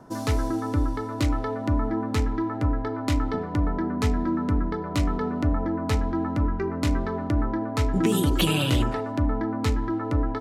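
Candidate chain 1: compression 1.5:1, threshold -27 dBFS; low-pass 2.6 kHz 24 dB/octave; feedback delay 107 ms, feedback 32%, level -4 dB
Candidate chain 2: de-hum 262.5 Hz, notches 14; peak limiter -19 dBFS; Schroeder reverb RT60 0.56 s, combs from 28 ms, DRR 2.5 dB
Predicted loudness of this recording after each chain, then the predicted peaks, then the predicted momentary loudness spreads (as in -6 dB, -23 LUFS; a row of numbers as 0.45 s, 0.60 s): -27.0 LUFS, -27.5 LUFS; -12.5 dBFS, -14.5 dBFS; 3 LU, 2 LU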